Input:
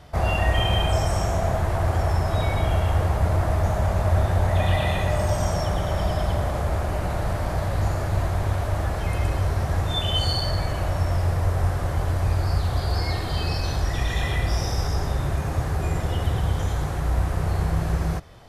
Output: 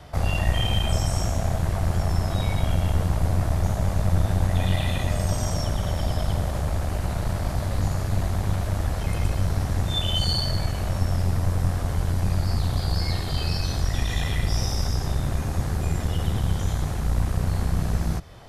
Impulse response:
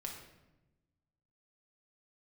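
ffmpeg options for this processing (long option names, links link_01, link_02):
-filter_complex "[0:a]acrossover=split=220|3000[link_01][link_02][link_03];[link_02]acompressor=threshold=-44dB:ratio=1.5[link_04];[link_01][link_04][link_03]amix=inputs=3:normalize=0,acrossover=split=2900[link_05][link_06];[link_05]aeval=exprs='clip(val(0),-1,0.0299)':channel_layout=same[link_07];[link_07][link_06]amix=inputs=2:normalize=0,volume=2.5dB"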